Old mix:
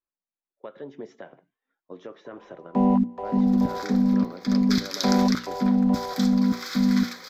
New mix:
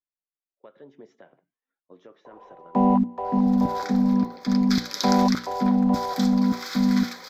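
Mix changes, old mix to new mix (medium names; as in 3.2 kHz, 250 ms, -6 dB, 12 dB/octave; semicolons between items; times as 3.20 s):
speech -8.5 dB; first sound: add peaking EQ 880 Hz +6 dB 0.93 oct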